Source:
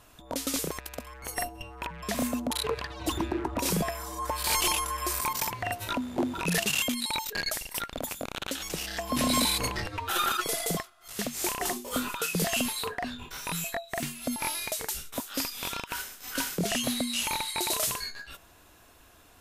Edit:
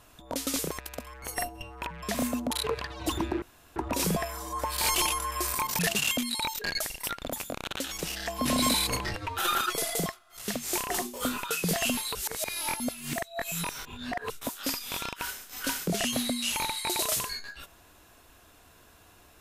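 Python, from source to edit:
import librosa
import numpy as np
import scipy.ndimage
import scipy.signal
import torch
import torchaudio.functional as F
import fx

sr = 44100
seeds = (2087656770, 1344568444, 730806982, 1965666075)

y = fx.edit(x, sr, fx.insert_room_tone(at_s=3.42, length_s=0.34),
    fx.cut(start_s=5.45, length_s=1.05),
    fx.reverse_span(start_s=12.86, length_s=2.15), tone=tone)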